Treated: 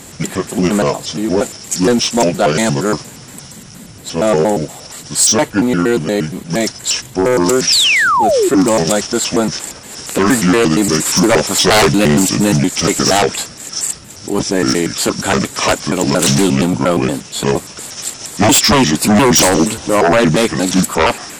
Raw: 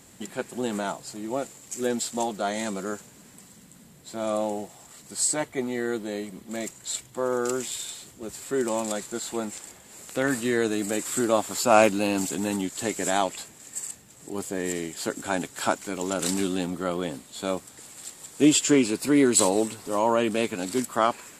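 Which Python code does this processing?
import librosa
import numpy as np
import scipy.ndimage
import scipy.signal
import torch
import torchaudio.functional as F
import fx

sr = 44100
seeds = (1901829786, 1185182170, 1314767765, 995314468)

y = fx.pitch_trill(x, sr, semitones=-5.5, every_ms=117)
y = fx.fold_sine(y, sr, drive_db=15, ceiling_db=-4.0)
y = fx.spec_paint(y, sr, seeds[0], shape='fall', start_s=7.67, length_s=0.82, low_hz=330.0, high_hz=6000.0, level_db=-10.0)
y = y * 10.0 ** (-1.5 / 20.0)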